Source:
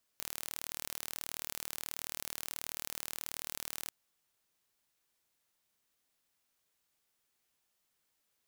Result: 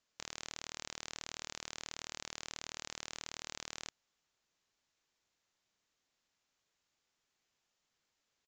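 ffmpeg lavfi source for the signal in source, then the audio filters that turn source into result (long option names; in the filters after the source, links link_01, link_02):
-f lavfi -i "aevalsrc='0.251*eq(mod(n,1145),0)':duration=3.69:sample_rate=44100"
-af "aresample=16000,aresample=44100"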